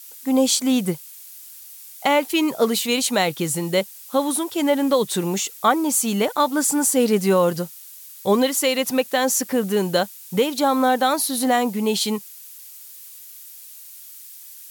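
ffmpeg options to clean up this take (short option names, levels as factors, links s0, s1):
-af "afftdn=nr=24:nf=-42"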